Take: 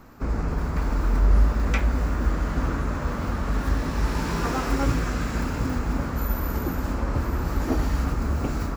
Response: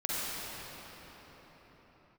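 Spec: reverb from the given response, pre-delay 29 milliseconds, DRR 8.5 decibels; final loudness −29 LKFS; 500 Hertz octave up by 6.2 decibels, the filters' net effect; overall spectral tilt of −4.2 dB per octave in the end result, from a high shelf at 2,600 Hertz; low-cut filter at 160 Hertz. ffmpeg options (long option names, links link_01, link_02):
-filter_complex "[0:a]highpass=160,equalizer=frequency=500:width_type=o:gain=8,highshelf=frequency=2600:gain=-7.5,asplit=2[link_01][link_02];[1:a]atrim=start_sample=2205,adelay=29[link_03];[link_02][link_03]afir=irnorm=-1:irlink=0,volume=-16.5dB[link_04];[link_01][link_04]amix=inputs=2:normalize=0,volume=-1dB"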